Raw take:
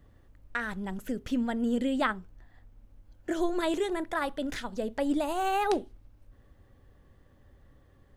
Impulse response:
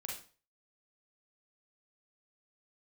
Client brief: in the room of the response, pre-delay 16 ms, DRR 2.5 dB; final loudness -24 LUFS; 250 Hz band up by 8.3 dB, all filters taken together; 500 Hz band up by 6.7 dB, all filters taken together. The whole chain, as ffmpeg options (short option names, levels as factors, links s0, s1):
-filter_complex "[0:a]equalizer=f=250:t=o:g=8,equalizer=f=500:t=o:g=6,asplit=2[s0][s1];[1:a]atrim=start_sample=2205,adelay=16[s2];[s1][s2]afir=irnorm=-1:irlink=0,volume=0.841[s3];[s0][s3]amix=inputs=2:normalize=0,volume=0.891"